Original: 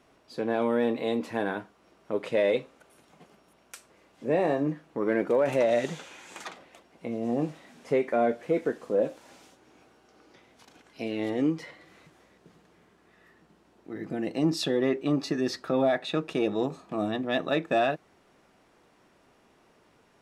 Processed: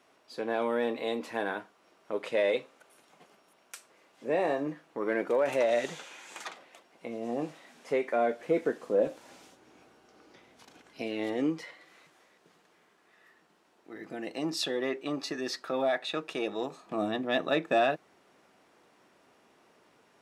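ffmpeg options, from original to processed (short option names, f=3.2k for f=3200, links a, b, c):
-af "asetnsamples=n=441:p=0,asendcmd='8.4 highpass f 210;9.07 highpass f 93;11.02 highpass f 330;11.61 highpass f 710;16.86 highpass f 240',highpass=f=510:p=1"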